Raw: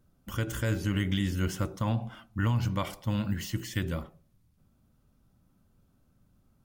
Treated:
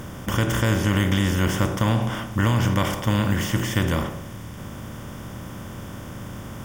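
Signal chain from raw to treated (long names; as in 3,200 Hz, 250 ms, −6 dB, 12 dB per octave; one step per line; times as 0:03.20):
compressor on every frequency bin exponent 0.4
notch filter 4,200 Hz, Q 5.1
level +4.5 dB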